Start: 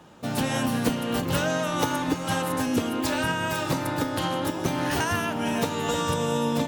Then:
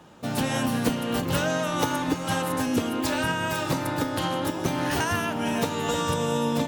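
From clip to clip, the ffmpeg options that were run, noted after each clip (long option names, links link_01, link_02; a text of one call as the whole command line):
ffmpeg -i in.wav -af anull out.wav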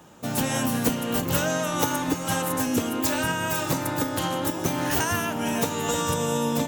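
ffmpeg -i in.wav -af "aexciter=amount=2.7:drive=2.3:freq=6100" out.wav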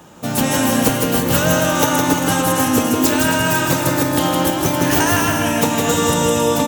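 ffmpeg -i in.wav -af "aecho=1:1:160|272|350.4|405.3|443.7:0.631|0.398|0.251|0.158|0.1,volume=7dB" out.wav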